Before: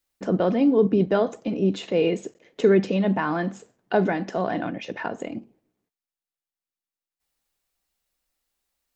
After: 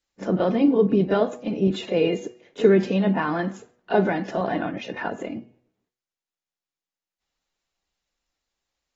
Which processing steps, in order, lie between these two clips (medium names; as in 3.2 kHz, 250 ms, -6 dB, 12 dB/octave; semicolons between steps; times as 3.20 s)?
de-hum 122.3 Hz, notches 24; pre-echo 31 ms -14 dB; AAC 24 kbps 48 kHz